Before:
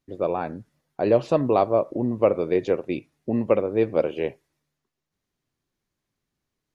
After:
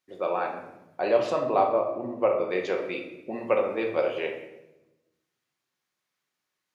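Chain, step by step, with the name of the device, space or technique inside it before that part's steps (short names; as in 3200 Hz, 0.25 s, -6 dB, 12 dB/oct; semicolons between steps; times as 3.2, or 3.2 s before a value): 1.31–2.5 high shelf 2200 Hz -10.5 dB; filter by subtraction (in parallel: LPF 1500 Hz 12 dB/oct + phase invert); on the sum: shoebox room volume 390 m³, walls mixed, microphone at 0.98 m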